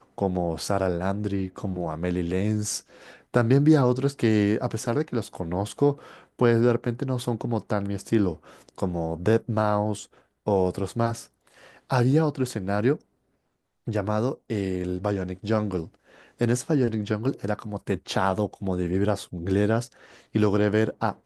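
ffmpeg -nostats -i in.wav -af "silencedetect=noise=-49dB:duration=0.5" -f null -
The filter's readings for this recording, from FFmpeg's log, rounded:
silence_start: 13.01
silence_end: 13.87 | silence_duration: 0.86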